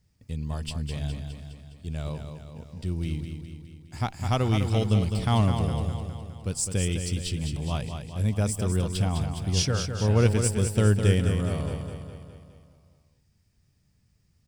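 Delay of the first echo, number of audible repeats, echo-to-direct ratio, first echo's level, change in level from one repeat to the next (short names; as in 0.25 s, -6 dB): 0.206 s, 6, -5.5 dB, -7.0 dB, -5.0 dB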